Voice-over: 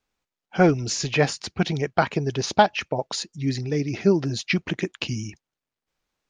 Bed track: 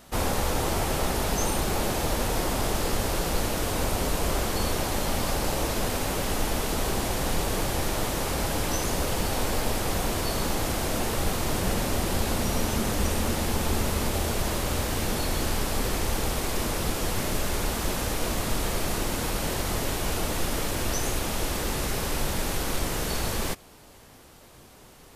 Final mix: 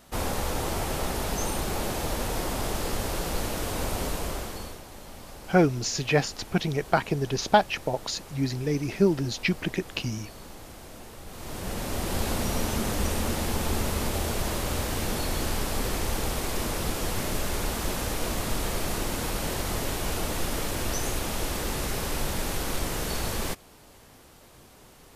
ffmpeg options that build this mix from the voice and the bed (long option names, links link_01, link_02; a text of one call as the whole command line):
ffmpeg -i stem1.wav -i stem2.wav -filter_complex "[0:a]adelay=4950,volume=-2.5dB[link_01];[1:a]volume=12.5dB,afade=type=out:start_time=4.04:duration=0.77:silence=0.199526,afade=type=in:start_time=11.27:duration=0.97:silence=0.16788[link_02];[link_01][link_02]amix=inputs=2:normalize=0" out.wav